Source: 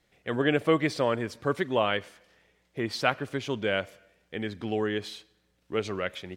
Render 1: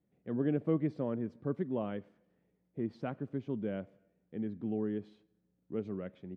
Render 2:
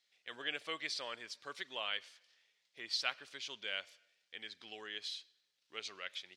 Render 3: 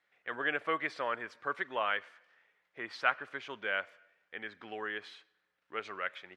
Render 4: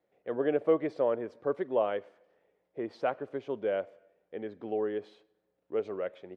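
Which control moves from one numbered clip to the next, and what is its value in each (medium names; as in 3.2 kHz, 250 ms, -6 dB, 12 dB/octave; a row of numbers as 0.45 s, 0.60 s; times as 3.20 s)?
band-pass filter, frequency: 200 Hz, 4.5 kHz, 1.5 kHz, 520 Hz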